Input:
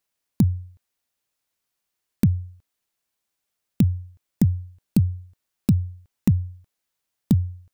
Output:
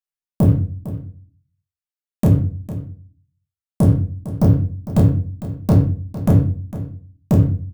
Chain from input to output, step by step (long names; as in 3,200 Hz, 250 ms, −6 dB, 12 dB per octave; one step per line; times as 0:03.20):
reverb reduction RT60 1.7 s
noise gate with hold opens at −49 dBFS
parametric band 340 Hz −3 dB 2.7 octaves
mains-hum notches 60/120 Hz
leveller curve on the samples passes 2
brickwall limiter −17.5 dBFS, peak gain reduction 8 dB
speech leveller 2 s
gain into a clipping stage and back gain 20.5 dB
double-tracking delay 29 ms −4 dB
single-tap delay 454 ms −14 dB
convolution reverb RT60 0.45 s, pre-delay 5 ms, DRR 1.5 dB
level +8.5 dB